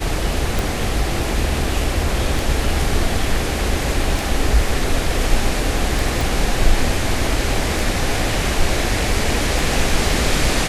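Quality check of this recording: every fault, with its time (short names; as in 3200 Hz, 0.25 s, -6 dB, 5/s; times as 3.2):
tick 33 1/3 rpm
6.21 pop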